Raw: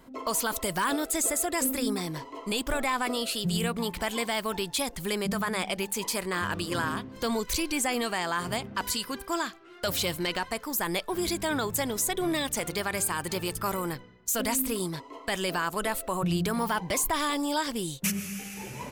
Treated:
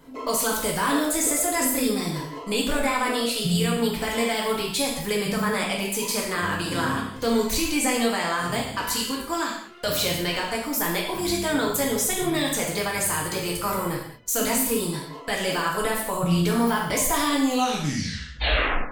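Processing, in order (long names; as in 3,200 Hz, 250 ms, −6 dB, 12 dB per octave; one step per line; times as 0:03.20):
turntable brake at the end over 1.59 s
reverb whose tail is shaped and stops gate 250 ms falling, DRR −3 dB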